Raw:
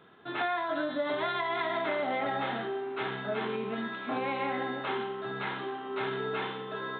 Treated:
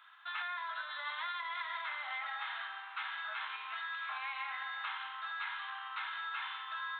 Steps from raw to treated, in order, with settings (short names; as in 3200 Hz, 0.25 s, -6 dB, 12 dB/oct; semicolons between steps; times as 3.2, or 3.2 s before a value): steep high-pass 1000 Hz 36 dB/oct; compressor, threshold -39 dBFS, peak gain reduction 9.5 dB; reverb RT60 3.0 s, pre-delay 53 ms, DRR 15.5 dB; gain +2 dB